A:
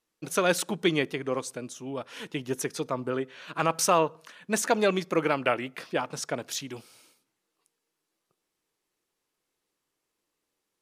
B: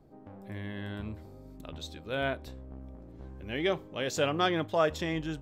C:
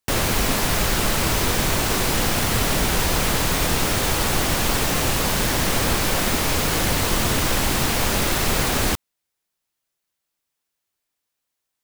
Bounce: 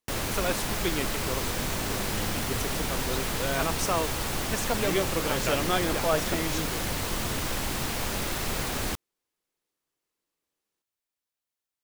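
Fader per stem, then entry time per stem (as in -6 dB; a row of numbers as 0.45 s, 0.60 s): -6.0 dB, 0.0 dB, -9.5 dB; 0.00 s, 1.30 s, 0.00 s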